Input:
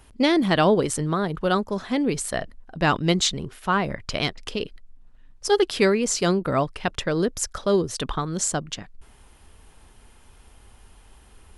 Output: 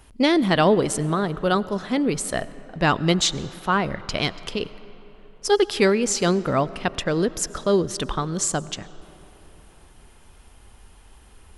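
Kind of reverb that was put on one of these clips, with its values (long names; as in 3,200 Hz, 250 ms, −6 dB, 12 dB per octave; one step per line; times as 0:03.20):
comb and all-pass reverb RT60 3.9 s, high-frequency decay 0.55×, pre-delay 60 ms, DRR 17.5 dB
level +1 dB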